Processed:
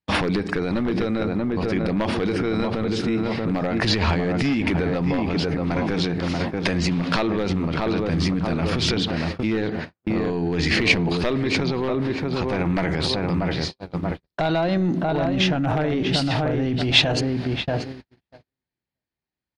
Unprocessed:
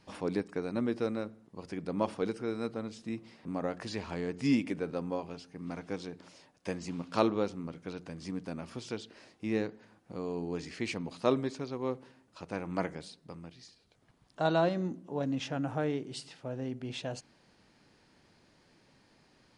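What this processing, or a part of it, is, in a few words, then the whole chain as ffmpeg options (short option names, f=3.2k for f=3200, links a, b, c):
mastering chain: -filter_complex "[0:a]lowshelf=f=470:g=2,asplit=2[a][b];[b]adelay=635,lowpass=f=1.7k:p=1,volume=-7dB,asplit=2[c][d];[d]adelay=635,lowpass=f=1.7k:p=1,volume=0.29,asplit=2[e][f];[f]adelay=635,lowpass=f=1.7k:p=1,volume=0.29,asplit=2[g][h];[h]adelay=635,lowpass=f=1.7k:p=1,volume=0.29[i];[a][c][e][g][i]amix=inputs=5:normalize=0,agate=range=-54dB:threshold=-49dB:ratio=16:detection=peak,highpass=55,equalizer=f=790:t=o:w=1.5:g=3.5,acompressor=threshold=-30dB:ratio=3,asoftclip=type=tanh:threshold=-22dB,tiltshelf=f=830:g=8,asoftclip=type=hard:threshold=-20.5dB,alimiter=level_in=32.5dB:limit=-1dB:release=50:level=0:latency=1,equalizer=f=125:t=o:w=1:g=-10,equalizer=f=250:t=o:w=1:g=-10,equalizer=f=500:t=o:w=1:g=-10,equalizer=f=1k:t=o:w=1:g=-5,equalizer=f=2k:t=o:w=1:g=5,equalizer=f=4k:t=o:w=1:g=7,equalizer=f=8k:t=o:w=1:g=-8,volume=-3dB"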